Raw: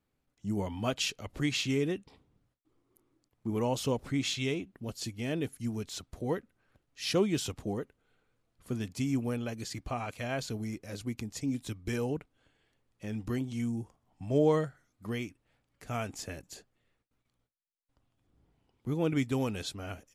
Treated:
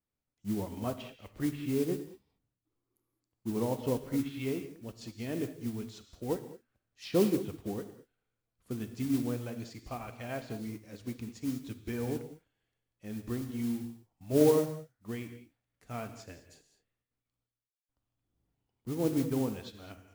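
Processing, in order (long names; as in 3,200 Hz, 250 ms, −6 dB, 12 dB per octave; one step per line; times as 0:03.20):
treble cut that deepens with the level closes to 950 Hz, closed at −26 dBFS
dynamic equaliser 320 Hz, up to +3 dB, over −43 dBFS, Q 0.81
noise that follows the level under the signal 18 dB
on a send at −6 dB: convolution reverb, pre-delay 3 ms
on the sum: expander for the loud parts 1.5 to 1, over −44 dBFS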